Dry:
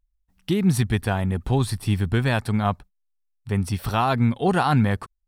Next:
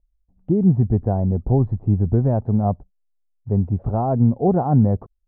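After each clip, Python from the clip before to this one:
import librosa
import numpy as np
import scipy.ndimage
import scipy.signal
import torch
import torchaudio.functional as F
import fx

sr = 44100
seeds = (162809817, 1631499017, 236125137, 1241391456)

y = scipy.signal.sosfilt(scipy.signal.cheby1(3, 1.0, 660.0, 'lowpass', fs=sr, output='sos'), x)
y = F.gain(torch.from_numpy(y), 4.5).numpy()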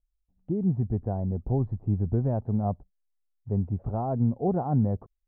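y = fx.rider(x, sr, range_db=10, speed_s=2.0)
y = F.gain(torch.from_numpy(y), -8.5).numpy()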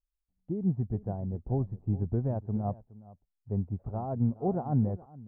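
y = x + 10.0 ** (-14.5 / 20.0) * np.pad(x, (int(419 * sr / 1000.0), 0))[:len(x)]
y = fx.upward_expand(y, sr, threshold_db=-36.0, expansion=1.5)
y = F.gain(torch.from_numpy(y), -2.0).numpy()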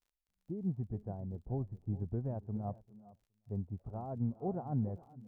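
y = fx.dmg_crackle(x, sr, seeds[0], per_s=45.0, level_db=-56.0)
y = y + 10.0 ** (-23.0 / 20.0) * np.pad(y, (int(395 * sr / 1000.0), 0))[:len(y)]
y = F.gain(torch.from_numpy(y), -7.5).numpy()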